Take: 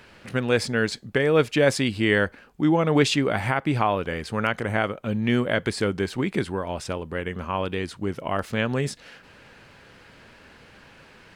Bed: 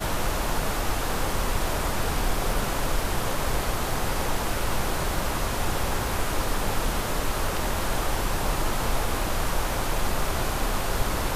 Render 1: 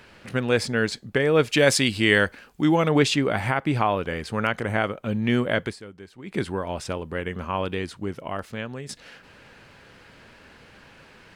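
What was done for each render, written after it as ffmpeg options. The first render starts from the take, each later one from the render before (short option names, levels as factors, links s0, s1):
-filter_complex "[0:a]asettb=1/sr,asplit=3[s0][s1][s2];[s0]atrim=end=1.484[s3];[s1]atrim=start=1.48:end=2.89,asetpts=PTS-STARTPTS,afade=t=in:d=0.004:c=qsin,afade=t=out:st=1.406:d=0.004:c=qsin,highshelf=f=2200:g=8.5[s4];[s2]atrim=start=2.886[s5];[s3][s4]acrossfade=d=0.004:c1=hsin:c2=qsin[s6];[s6][s5]acrossfade=d=0.004:c1=qsin:c2=hsin,asplit=4[s7][s8][s9][s10];[s7]atrim=end=5.79,asetpts=PTS-STARTPTS,afade=t=out:st=5.6:d=0.19:silence=0.133352[s11];[s8]atrim=start=5.79:end=6.23,asetpts=PTS-STARTPTS,volume=0.133[s12];[s9]atrim=start=6.23:end=8.89,asetpts=PTS-STARTPTS,afade=t=in:d=0.19:silence=0.133352,afade=t=out:st=1.48:d=1.18:silence=0.223872[s13];[s10]atrim=start=8.89,asetpts=PTS-STARTPTS,afade=t=in:d=0.004:c=hsin:silence=0.223872[s14];[s11][s12][s13][s14]concat=n=4:v=0:a=1"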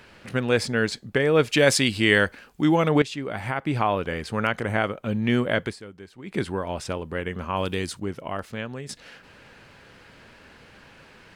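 -filter_complex "[0:a]asettb=1/sr,asplit=3[s0][s1][s2];[s0]atrim=end=7.564[s3];[s1]atrim=start=7.56:end=8,asetpts=PTS-STARTPTS,afade=t=in:d=0.004:c=qsin,afade=t=out:st=0.436:d=0.004:c=qsin,bass=f=250:g=2,treble=f=4000:g=11[s4];[s2]atrim=start=7.996[s5];[s3][s4]acrossfade=d=0.004:c1=hsin:c2=qsin[s6];[s6][s5]acrossfade=d=0.004:c1=qsin:c2=hsin,asplit=2[s7][s8];[s7]atrim=end=3.02,asetpts=PTS-STARTPTS,afade=t=out:st=3.016:d=0.004:c=hsin:silence=0.188365[s9];[s8]atrim=start=3.02,asetpts=PTS-STARTPTS,afade=t=in:d=0.92:silence=0.188365[s10];[s9][s10]concat=n=2:v=0:a=1"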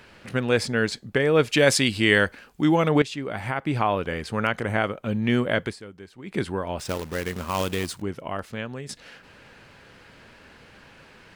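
-filter_complex "[0:a]asettb=1/sr,asplit=3[s0][s1][s2];[s0]atrim=end=6.794[s3];[s1]atrim=start=6.79:end=8.02,asetpts=PTS-STARTPTS,afade=t=in:d=0.004:c=qsin,afade=t=out:st=1.226:d=0.004:c=qsin,acrusher=bits=2:mode=log:mix=0:aa=0.000001[s4];[s2]atrim=start=8.016[s5];[s3][s4]acrossfade=d=0.004:c1=hsin:c2=qsin[s6];[s6][s5]acrossfade=d=0.004:c1=qsin:c2=hsin"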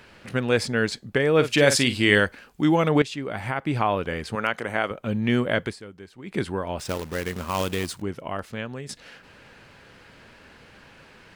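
-filter_complex "[0:a]asettb=1/sr,asplit=3[s0][s1][s2];[s0]atrim=end=1.354[s3];[s1]atrim=start=1.35:end=2.2,asetpts=PTS-STARTPTS,afade=t=in:d=0.004:c=qsin,afade=t=out:st=0.846:d=0.004:c=qsin,asplit=2[s4][s5];[s5]adelay=48,volume=0.299[s6];[s4][s6]amix=inputs=2:normalize=0,atrim=end_sample=37485[s7];[s2]atrim=start=2.196[s8];[s3][s7]acrossfade=d=0.004:c1=hsin:c2=qsin[s9];[s9][s8]acrossfade=d=0.004:c1=qsin:c2=hsin,asettb=1/sr,asplit=3[s10][s11][s12];[s10]atrim=end=4.354[s13];[s11]atrim=start=4.35:end=4.91,asetpts=PTS-STARTPTS,afade=t=in:d=0.004:c=qsin,afade=t=out:st=0.556:d=0.004:c=qsin,highpass=f=350:p=1[s14];[s12]atrim=start=4.906[s15];[s13][s14]acrossfade=d=0.004:c1=hsin:c2=qsin[s16];[s16][s15]acrossfade=d=0.004:c1=qsin:c2=hsin"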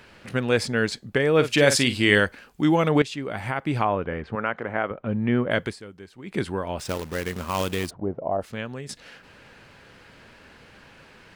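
-filter_complex "[0:a]asettb=1/sr,asplit=3[s0][s1][s2];[s0]atrim=end=3.854[s3];[s1]atrim=start=3.85:end=5.51,asetpts=PTS-STARTPTS,afade=t=in:d=0.004:c=qsin,afade=t=out:st=1.656:d=0.004:c=qsin,lowpass=1800[s4];[s2]atrim=start=5.506[s5];[s3][s4]acrossfade=d=0.004:c1=hsin:c2=qsin[s6];[s6][s5]acrossfade=d=0.004:c1=qsin:c2=hsin,asplit=3[s7][s8][s9];[s7]afade=t=out:st=7.89:d=0.02[s10];[s8]lowpass=f=680:t=q:w=2.9,afade=t=in:st=7.89:d=0.02,afade=t=out:st=8.4:d=0.02[s11];[s9]afade=t=in:st=8.4:d=0.02[s12];[s10][s11][s12]amix=inputs=3:normalize=0"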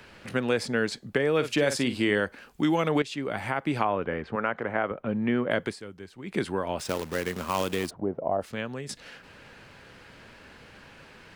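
-filter_complex "[0:a]acrossover=split=160|1400[s0][s1][s2];[s0]acompressor=threshold=0.00562:ratio=4[s3];[s1]acompressor=threshold=0.0794:ratio=4[s4];[s2]acompressor=threshold=0.0251:ratio=4[s5];[s3][s4][s5]amix=inputs=3:normalize=0"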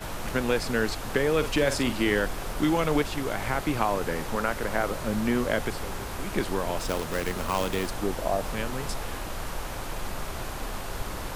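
-filter_complex "[1:a]volume=0.398[s0];[0:a][s0]amix=inputs=2:normalize=0"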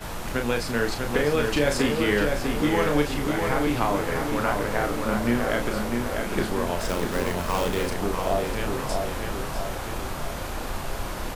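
-filter_complex "[0:a]asplit=2[s0][s1];[s1]adelay=34,volume=0.531[s2];[s0][s2]amix=inputs=2:normalize=0,asplit=2[s3][s4];[s4]adelay=648,lowpass=f=3500:p=1,volume=0.631,asplit=2[s5][s6];[s6]adelay=648,lowpass=f=3500:p=1,volume=0.54,asplit=2[s7][s8];[s8]adelay=648,lowpass=f=3500:p=1,volume=0.54,asplit=2[s9][s10];[s10]adelay=648,lowpass=f=3500:p=1,volume=0.54,asplit=2[s11][s12];[s12]adelay=648,lowpass=f=3500:p=1,volume=0.54,asplit=2[s13][s14];[s14]adelay=648,lowpass=f=3500:p=1,volume=0.54,asplit=2[s15][s16];[s16]adelay=648,lowpass=f=3500:p=1,volume=0.54[s17];[s5][s7][s9][s11][s13][s15][s17]amix=inputs=7:normalize=0[s18];[s3][s18]amix=inputs=2:normalize=0"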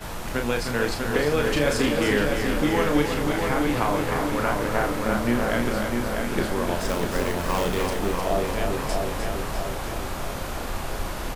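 -af "aecho=1:1:306:0.473"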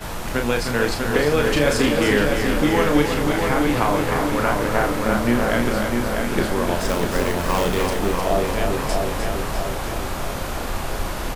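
-af "volume=1.58"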